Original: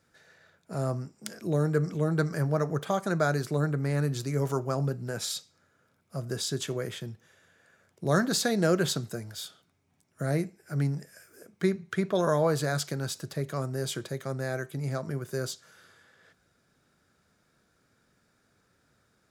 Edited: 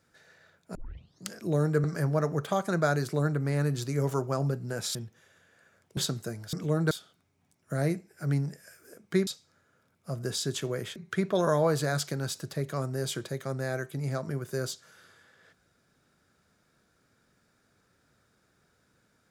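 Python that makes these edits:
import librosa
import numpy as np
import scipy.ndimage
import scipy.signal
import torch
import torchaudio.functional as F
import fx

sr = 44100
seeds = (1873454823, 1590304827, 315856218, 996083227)

y = fx.edit(x, sr, fx.tape_start(start_s=0.75, length_s=0.56),
    fx.move(start_s=1.84, length_s=0.38, to_s=9.4),
    fx.move(start_s=5.33, length_s=1.69, to_s=11.76),
    fx.cut(start_s=8.04, length_s=0.8), tone=tone)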